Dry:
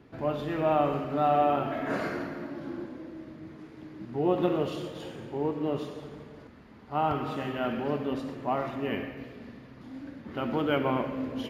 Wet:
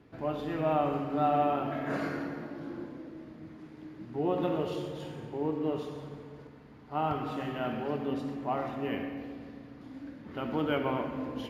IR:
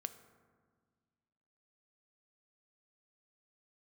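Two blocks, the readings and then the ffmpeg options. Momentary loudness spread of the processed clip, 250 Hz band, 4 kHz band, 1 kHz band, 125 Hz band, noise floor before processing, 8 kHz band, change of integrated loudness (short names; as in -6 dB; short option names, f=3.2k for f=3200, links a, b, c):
18 LU, -2.0 dB, -3.5 dB, -3.0 dB, -2.0 dB, -50 dBFS, n/a, -3.0 dB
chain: -filter_complex "[1:a]atrim=start_sample=2205,asetrate=29106,aresample=44100[a];[0:a][a]afir=irnorm=-1:irlink=0,volume=-2.5dB"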